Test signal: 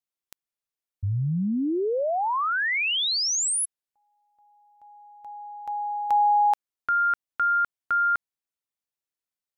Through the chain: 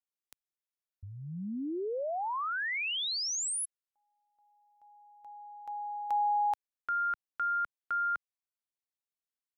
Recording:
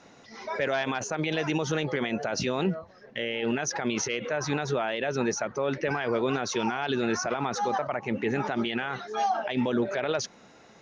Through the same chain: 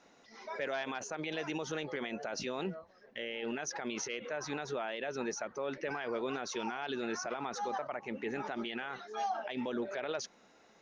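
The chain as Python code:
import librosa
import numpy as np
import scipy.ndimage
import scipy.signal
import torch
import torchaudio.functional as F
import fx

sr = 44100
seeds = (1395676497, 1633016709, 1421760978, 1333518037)

y = fx.peak_eq(x, sr, hz=110.0, db=-11.0, octaves=1.2)
y = y * 10.0 ** (-8.5 / 20.0)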